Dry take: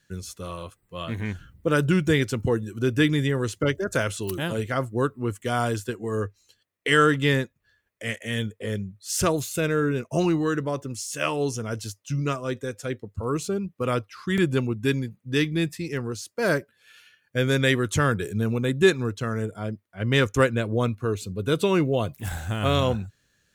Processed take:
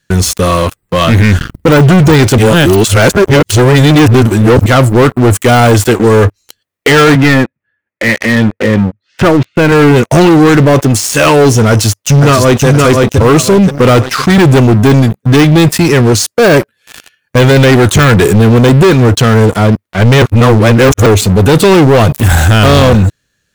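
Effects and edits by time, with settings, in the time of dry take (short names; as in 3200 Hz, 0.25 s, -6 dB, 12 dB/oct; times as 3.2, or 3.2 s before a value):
2.38–4.66 reverse
7.15–9.72 speaker cabinet 170–2200 Hz, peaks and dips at 190 Hz -3 dB, 430 Hz -9 dB, 690 Hz -7 dB, 1100 Hz -8 dB, 1600 Hz -3 dB
11.69–12.66 echo throw 0.52 s, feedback 40%, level -5 dB
20.22–21.06 reverse
whole clip: de-esser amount 80%; sample leveller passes 5; maximiser +15.5 dB; gain -1 dB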